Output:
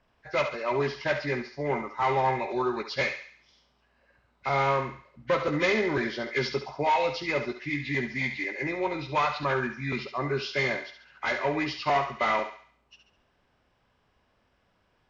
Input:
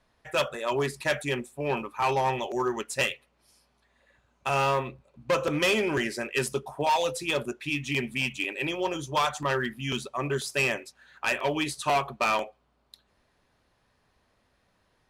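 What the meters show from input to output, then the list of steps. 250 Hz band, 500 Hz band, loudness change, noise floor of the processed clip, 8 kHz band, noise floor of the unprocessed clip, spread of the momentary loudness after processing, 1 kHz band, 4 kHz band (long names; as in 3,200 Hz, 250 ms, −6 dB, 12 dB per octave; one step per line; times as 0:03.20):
0.0 dB, 0.0 dB, −0.5 dB, −70 dBFS, −12.5 dB, −70 dBFS, 7 LU, +0.5 dB, −4.0 dB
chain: hearing-aid frequency compression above 1,400 Hz 1.5 to 1
feedback echo with a high-pass in the loop 69 ms, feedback 48%, high-pass 710 Hz, level −7.5 dB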